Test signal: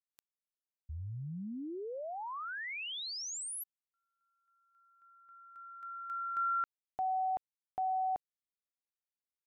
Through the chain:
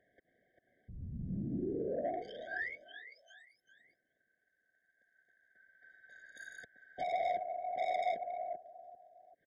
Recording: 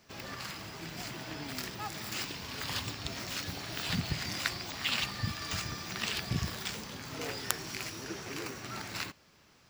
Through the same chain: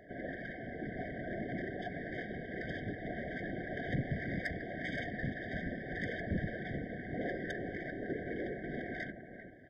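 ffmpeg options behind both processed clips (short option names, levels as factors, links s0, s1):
-filter_complex "[0:a]highpass=160,asplit=2[s0][s1];[s1]adelay=393,lowpass=f=1400:p=1,volume=0.355,asplit=2[s2][s3];[s3]adelay=393,lowpass=f=1400:p=1,volume=0.2,asplit=2[s4][s5];[s5]adelay=393,lowpass=f=1400:p=1,volume=0.2[s6];[s0][s2][s4][s6]amix=inputs=4:normalize=0,acontrast=67,lowpass=f=1800:w=0.5412,lowpass=f=1800:w=1.3066,equalizer=f=970:w=3.4:g=7.5,afftfilt=real='hypot(re,im)*cos(2*PI*random(0))':imag='hypot(re,im)*sin(2*PI*random(1))':win_size=512:overlap=0.75,acompressor=mode=upward:threshold=0.00355:ratio=2.5:attack=0.13:release=79:knee=2.83:detection=peak,asoftclip=type=tanh:threshold=0.0237,afftfilt=real='re*eq(mod(floor(b*sr/1024/760),2),0)':imag='im*eq(mod(floor(b*sr/1024/760),2),0)':win_size=1024:overlap=0.75,volume=1.78"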